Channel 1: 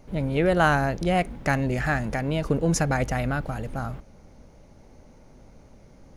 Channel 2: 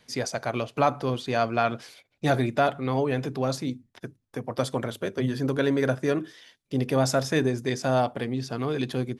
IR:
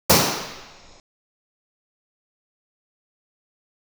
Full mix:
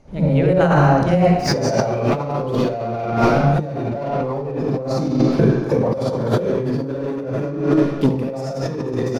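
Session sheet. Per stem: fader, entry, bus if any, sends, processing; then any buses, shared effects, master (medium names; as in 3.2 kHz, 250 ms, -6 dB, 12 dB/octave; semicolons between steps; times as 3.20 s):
-9.5 dB, 0.00 s, muted 1.54–3.12 s, send -22.5 dB, low-pass 8.6 kHz 12 dB/octave
-4.5 dB, 1.30 s, send -19 dB, treble shelf 3.3 kHz -6 dB; waveshaping leveller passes 3; auto duck -17 dB, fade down 0.60 s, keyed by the first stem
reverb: on, pre-delay 46 ms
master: compressor with a negative ratio -20 dBFS, ratio -1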